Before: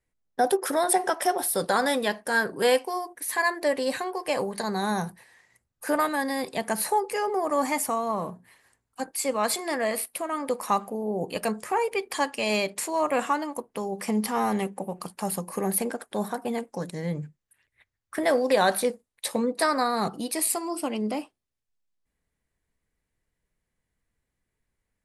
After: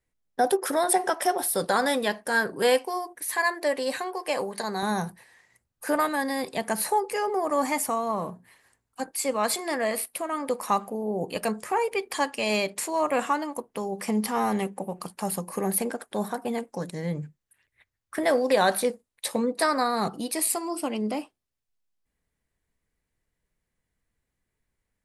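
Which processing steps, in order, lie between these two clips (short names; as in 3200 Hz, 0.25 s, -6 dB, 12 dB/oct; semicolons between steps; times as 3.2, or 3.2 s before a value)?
3.21–4.83 HPF 280 Hz 6 dB/oct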